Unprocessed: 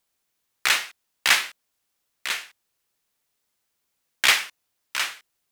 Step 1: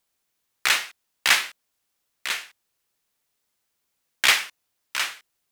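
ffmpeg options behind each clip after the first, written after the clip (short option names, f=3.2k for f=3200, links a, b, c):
-af anull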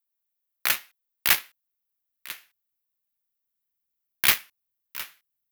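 -af "asubboost=boost=3:cutoff=230,aeval=exprs='0.75*(cos(1*acos(clip(val(0)/0.75,-1,1)))-cos(1*PI/2))+0.0376*(cos(3*acos(clip(val(0)/0.75,-1,1)))-cos(3*PI/2))+0.075*(cos(7*acos(clip(val(0)/0.75,-1,1)))-cos(7*PI/2))':c=same,aexciter=amount=4.5:drive=6.5:freq=11k,volume=-2dB"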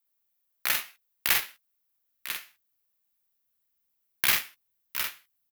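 -filter_complex "[0:a]alimiter=limit=-12dB:level=0:latency=1:release=138,asplit=2[a][b];[b]aecho=0:1:47|61:0.668|0.158[c];[a][c]amix=inputs=2:normalize=0,volume=3.5dB"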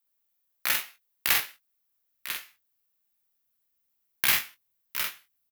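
-filter_complex "[0:a]asplit=2[a][b];[b]adelay=21,volume=-9dB[c];[a][c]amix=inputs=2:normalize=0"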